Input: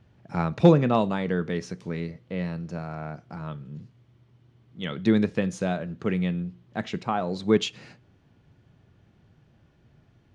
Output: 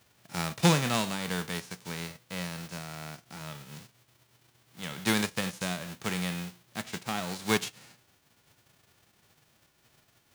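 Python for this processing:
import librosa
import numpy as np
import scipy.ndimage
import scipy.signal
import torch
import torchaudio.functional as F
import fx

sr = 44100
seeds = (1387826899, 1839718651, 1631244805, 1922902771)

y = fx.envelope_flatten(x, sr, power=0.3)
y = F.gain(torch.from_numpy(y), -6.5).numpy()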